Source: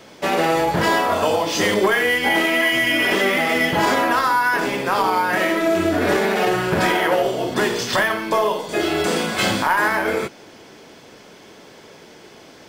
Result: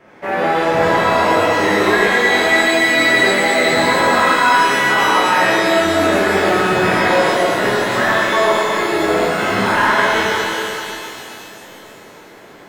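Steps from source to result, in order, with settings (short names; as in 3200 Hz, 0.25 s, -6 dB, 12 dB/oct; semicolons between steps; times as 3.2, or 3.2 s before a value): resonant high shelf 2800 Hz -12.5 dB, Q 1.5; shimmer reverb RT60 2.9 s, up +12 st, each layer -8 dB, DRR -8.5 dB; gain -6 dB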